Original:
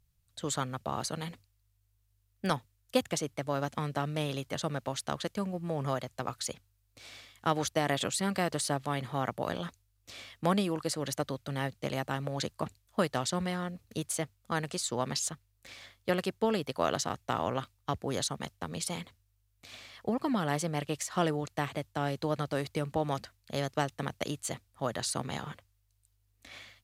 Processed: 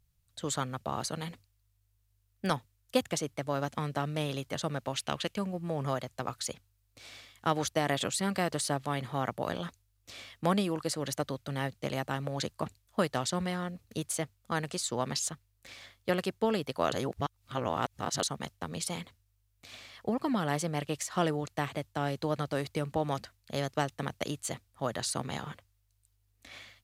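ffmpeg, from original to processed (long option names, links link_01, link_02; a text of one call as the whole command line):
ffmpeg -i in.wav -filter_complex "[0:a]asettb=1/sr,asplit=3[link_01][link_02][link_03];[link_01]atrim=end=4.934[link_04];[link_02]atrim=start=4.93:end=5.38,asetpts=PTS-STARTPTS,afade=type=in:duration=0.004:curve=qsin,afade=type=out:start_time=0.446:duration=0.004:curve=qsin,equalizer=frequency=2700:width_type=o:width=0.62:gain=9.5[link_05];[link_03]atrim=start=5.376[link_06];[link_04][link_05]acrossfade=duration=0.004:curve1=hsin:curve2=qsin[link_07];[link_07][link_06]acrossfade=duration=0.004:curve1=qsin:curve2=hsin,asplit=3[link_08][link_09][link_10];[link_08]atrim=end=16.922[link_11];[link_09]atrim=start=16.918:end=18.232,asetpts=PTS-STARTPTS,areverse[link_12];[link_10]atrim=start=18.228[link_13];[link_11][link_12]acrossfade=duration=0.004:curve1=hsin:curve2=hsin[link_14];[link_14][link_13]acrossfade=duration=0.004:curve1=hsin:curve2=hsin" out.wav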